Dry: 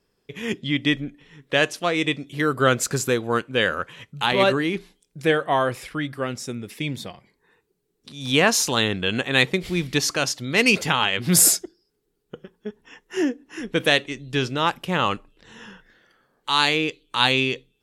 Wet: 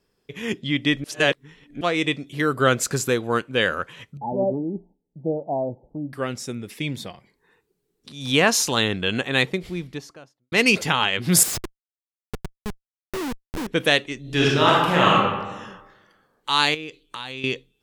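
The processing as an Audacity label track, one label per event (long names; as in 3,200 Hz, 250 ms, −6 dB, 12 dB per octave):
1.040000	1.810000	reverse
4.170000	6.130000	Chebyshev low-pass with heavy ripple 900 Hz, ripple 6 dB
9.110000	10.520000	fade out and dull
11.430000	13.670000	comparator with hysteresis flips at −31 dBFS
14.200000	15.140000	thrown reverb, RT60 1.2 s, DRR −5.5 dB
16.740000	17.440000	downward compressor, threshold −30 dBFS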